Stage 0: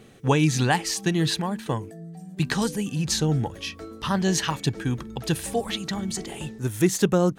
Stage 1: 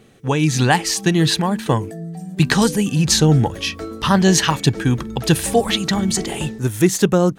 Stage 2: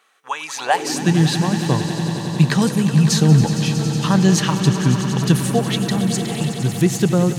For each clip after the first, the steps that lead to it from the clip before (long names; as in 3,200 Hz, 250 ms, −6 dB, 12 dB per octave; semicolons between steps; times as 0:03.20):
automatic gain control gain up to 11.5 dB
echo that builds up and dies away 92 ms, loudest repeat 5, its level −13 dB; high-pass filter sweep 1,100 Hz → 140 Hz, 0:00.54–0:01.13; level −5 dB